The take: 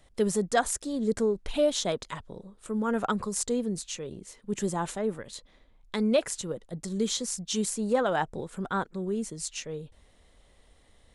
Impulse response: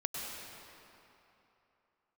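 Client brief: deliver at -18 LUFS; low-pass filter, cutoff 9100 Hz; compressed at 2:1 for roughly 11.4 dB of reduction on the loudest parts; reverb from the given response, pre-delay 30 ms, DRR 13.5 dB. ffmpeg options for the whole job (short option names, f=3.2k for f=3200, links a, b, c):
-filter_complex "[0:a]lowpass=9.1k,acompressor=threshold=-41dB:ratio=2,asplit=2[a][b];[1:a]atrim=start_sample=2205,adelay=30[c];[b][c]afir=irnorm=-1:irlink=0,volume=-16.5dB[d];[a][d]amix=inputs=2:normalize=0,volume=21dB"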